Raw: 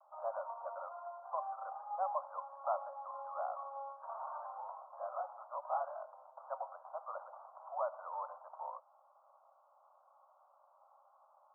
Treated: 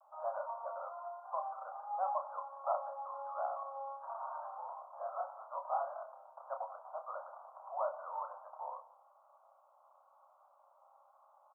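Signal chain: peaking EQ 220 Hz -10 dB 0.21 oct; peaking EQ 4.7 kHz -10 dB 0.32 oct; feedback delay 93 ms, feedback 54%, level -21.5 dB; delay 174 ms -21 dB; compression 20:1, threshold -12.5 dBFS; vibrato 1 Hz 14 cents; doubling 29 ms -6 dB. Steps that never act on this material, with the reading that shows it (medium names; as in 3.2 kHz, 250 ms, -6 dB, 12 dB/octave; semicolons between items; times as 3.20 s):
peaking EQ 220 Hz: input has nothing below 480 Hz; peaking EQ 4.7 kHz: input has nothing above 1.5 kHz; compression, threshold -12.5 dBFS: peak at its input -24.0 dBFS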